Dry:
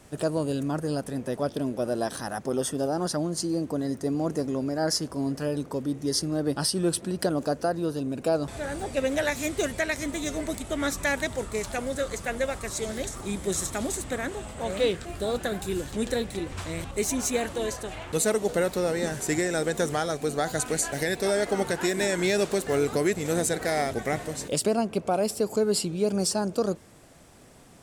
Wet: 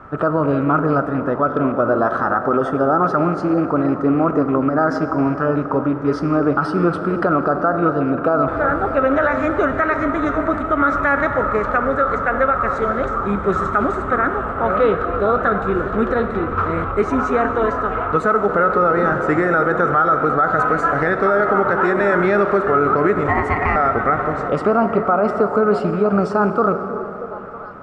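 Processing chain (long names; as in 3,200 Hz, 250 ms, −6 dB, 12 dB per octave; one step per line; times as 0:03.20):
loose part that buzzes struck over −31 dBFS, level −36 dBFS
low-pass with resonance 1,300 Hz, resonance Q 12
0:23.28–0:23.76: ring modulation 580 Hz
on a send: echo through a band-pass that steps 318 ms, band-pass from 330 Hz, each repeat 0.7 octaves, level −11 dB
on the sum: dense smooth reverb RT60 3.3 s, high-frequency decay 0.65×, DRR 9.5 dB
boost into a limiter +15 dB
level −6 dB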